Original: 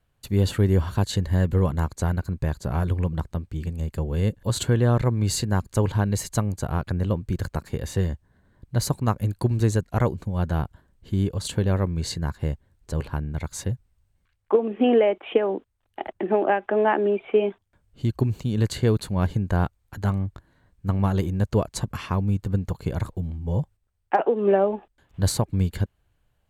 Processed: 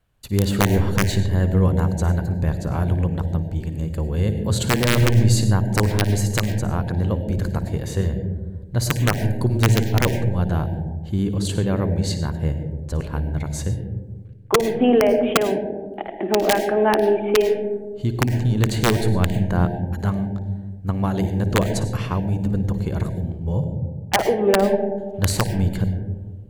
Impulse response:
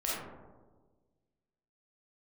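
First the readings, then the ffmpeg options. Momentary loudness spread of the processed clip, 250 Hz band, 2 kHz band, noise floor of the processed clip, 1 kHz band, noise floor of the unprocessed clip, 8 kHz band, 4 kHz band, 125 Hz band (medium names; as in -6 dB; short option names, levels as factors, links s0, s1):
10 LU, +4.5 dB, +7.5 dB, -35 dBFS, +3.0 dB, -70 dBFS, +4.5 dB, +6.5 dB, +3.5 dB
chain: -filter_complex "[0:a]aeval=exprs='(mod(3.16*val(0)+1,2)-1)/3.16':c=same,asplit=2[s0][s1];[s1]asuperstop=centerf=1200:order=20:qfactor=2.1[s2];[1:a]atrim=start_sample=2205,lowshelf=f=390:g=7.5,adelay=56[s3];[s2][s3]afir=irnorm=-1:irlink=0,volume=0.211[s4];[s0][s4]amix=inputs=2:normalize=0,volume=1.19"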